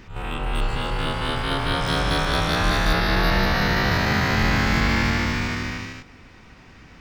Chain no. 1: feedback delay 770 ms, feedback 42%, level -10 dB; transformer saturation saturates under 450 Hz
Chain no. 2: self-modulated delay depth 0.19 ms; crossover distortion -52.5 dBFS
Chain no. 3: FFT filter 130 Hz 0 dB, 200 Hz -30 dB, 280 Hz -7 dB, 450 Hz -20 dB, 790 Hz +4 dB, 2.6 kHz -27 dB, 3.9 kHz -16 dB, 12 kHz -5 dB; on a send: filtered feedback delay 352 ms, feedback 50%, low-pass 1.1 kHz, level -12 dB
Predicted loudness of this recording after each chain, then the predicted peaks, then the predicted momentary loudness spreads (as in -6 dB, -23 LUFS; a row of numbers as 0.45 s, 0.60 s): -26.5 LUFS, -23.0 LUFS, -27.0 LUFS; -7.5 dBFS, -8.0 dBFS, -10.5 dBFS; 10 LU, 8 LU, 10 LU